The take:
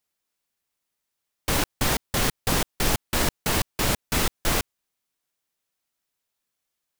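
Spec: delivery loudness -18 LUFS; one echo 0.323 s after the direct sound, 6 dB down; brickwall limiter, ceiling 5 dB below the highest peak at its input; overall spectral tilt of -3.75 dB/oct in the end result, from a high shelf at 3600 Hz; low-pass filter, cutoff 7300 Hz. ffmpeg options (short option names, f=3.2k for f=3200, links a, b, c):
-af "lowpass=7.3k,highshelf=f=3.6k:g=6,alimiter=limit=-13dB:level=0:latency=1,aecho=1:1:323:0.501,volume=7.5dB"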